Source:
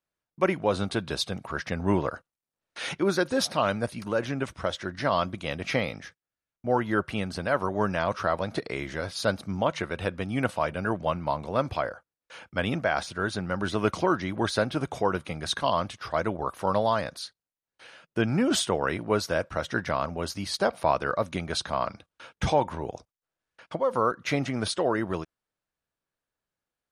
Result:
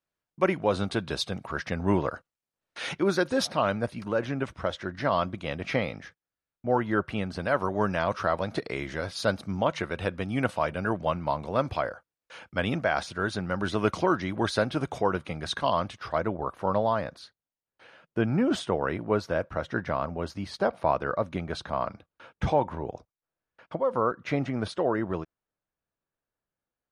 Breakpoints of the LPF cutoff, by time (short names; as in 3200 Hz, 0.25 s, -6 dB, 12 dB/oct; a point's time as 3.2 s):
LPF 6 dB/oct
6600 Hz
from 3.47 s 2900 Hz
from 7.39 s 7300 Hz
from 14.98 s 3900 Hz
from 16.18 s 1500 Hz